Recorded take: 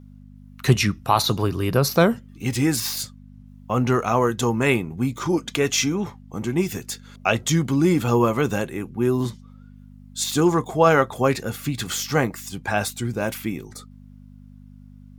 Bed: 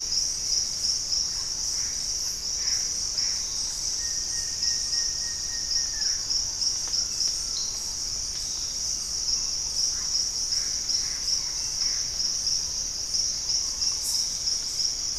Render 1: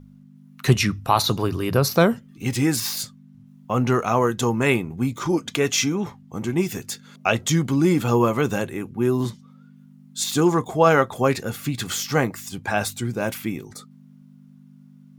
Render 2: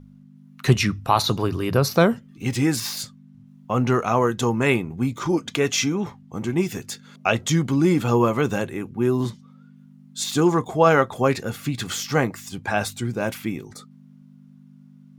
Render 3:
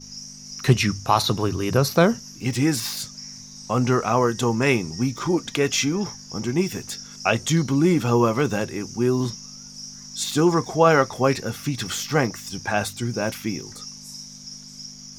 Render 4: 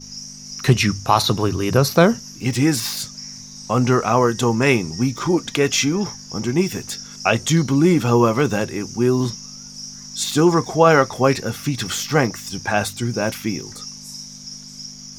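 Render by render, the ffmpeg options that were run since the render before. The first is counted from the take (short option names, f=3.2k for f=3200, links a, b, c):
-af "bandreject=f=50:t=h:w=4,bandreject=f=100:t=h:w=4"
-af "highshelf=f=9.4k:g=-7"
-filter_complex "[1:a]volume=-12.5dB[a];[0:a][a]amix=inputs=2:normalize=0"
-af "volume=3.5dB,alimiter=limit=-2dB:level=0:latency=1"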